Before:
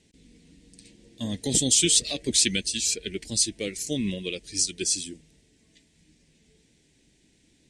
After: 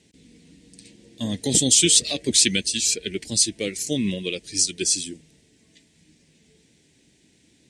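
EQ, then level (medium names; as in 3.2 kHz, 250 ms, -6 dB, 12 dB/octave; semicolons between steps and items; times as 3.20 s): high-pass 79 Hz; +4.0 dB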